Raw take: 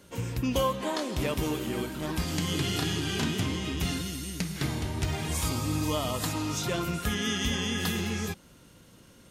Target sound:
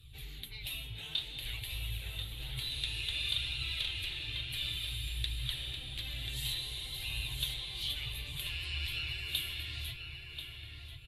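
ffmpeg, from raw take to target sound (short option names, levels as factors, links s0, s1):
-filter_complex "[0:a]afftfilt=real='re*lt(hypot(re,im),0.1)':imag='im*lt(hypot(re,im),0.1)':win_size=1024:overlap=0.75,firequalizer=gain_entry='entry(150,0);entry(220,-29);entry(320,-24);entry(490,-24);entry(820,-27);entry(1400,-27);entry(2200,-17);entry(4400,4);entry(6300,-27);entry(14000,-4)':delay=0.05:min_phase=1,flanger=delay=0.6:depth=5.7:regen=52:speed=0.66:shape=sinusoidal,asetrate=37044,aresample=44100,asplit=2[s0][s1];[s1]adelay=1037,lowpass=f=2800:p=1,volume=0.562,asplit=2[s2][s3];[s3]adelay=1037,lowpass=f=2800:p=1,volume=0.36,asplit=2[s4][s5];[s5]adelay=1037,lowpass=f=2800:p=1,volume=0.36,asplit=2[s6][s7];[s7]adelay=1037,lowpass=f=2800:p=1,volume=0.36[s8];[s2][s4][s6][s8]amix=inputs=4:normalize=0[s9];[s0][s9]amix=inputs=2:normalize=0,volume=2.66"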